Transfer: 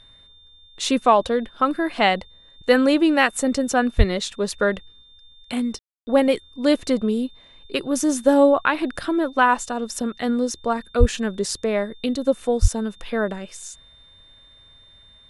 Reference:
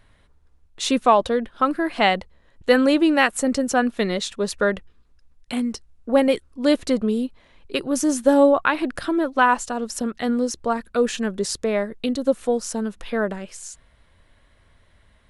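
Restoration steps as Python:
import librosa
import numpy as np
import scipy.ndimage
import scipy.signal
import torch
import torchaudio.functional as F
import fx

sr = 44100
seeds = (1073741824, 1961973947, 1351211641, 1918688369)

y = fx.notch(x, sr, hz=3600.0, q=30.0)
y = fx.highpass(y, sr, hz=140.0, slope=24, at=(3.97, 4.09), fade=0.02)
y = fx.highpass(y, sr, hz=140.0, slope=24, at=(10.99, 11.11), fade=0.02)
y = fx.highpass(y, sr, hz=140.0, slope=24, at=(12.61, 12.73), fade=0.02)
y = fx.fix_ambience(y, sr, seeds[0], print_start_s=14.78, print_end_s=15.28, start_s=5.79, end_s=6.07)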